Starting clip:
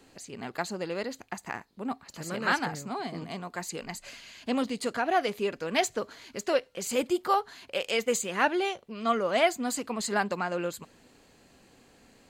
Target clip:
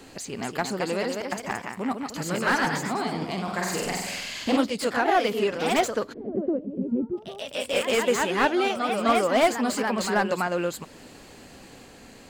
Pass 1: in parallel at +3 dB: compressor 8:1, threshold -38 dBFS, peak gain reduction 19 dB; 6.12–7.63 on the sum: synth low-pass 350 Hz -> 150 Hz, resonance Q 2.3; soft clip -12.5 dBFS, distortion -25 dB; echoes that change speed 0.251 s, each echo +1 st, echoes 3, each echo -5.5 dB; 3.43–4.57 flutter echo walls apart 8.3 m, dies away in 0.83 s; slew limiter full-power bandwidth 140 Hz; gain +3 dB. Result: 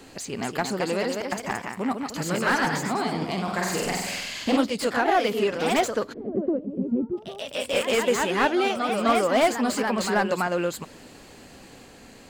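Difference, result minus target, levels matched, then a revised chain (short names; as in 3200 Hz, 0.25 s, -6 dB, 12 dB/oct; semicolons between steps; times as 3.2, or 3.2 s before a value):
soft clip: distortion +13 dB; compressor: peak gain reduction -5.5 dB
in parallel at +3 dB: compressor 8:1, threshold -44.5 dBFS, peak gain reduction 24.5 dB; 6.12–7.63 on the sum: synth low-pass 350 Hz -> 150 Hz, resonance Q 2.3; soft clip -6 dBFS, distortion -37 dB; echoes that change speed 0.251 s, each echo +1 st, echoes 3, each echo -5.5 dB; 3.43–4.57 flutter echo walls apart 8.3 m, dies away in 0.83 s; slew limiter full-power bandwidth 140 Hz; gain +3 dB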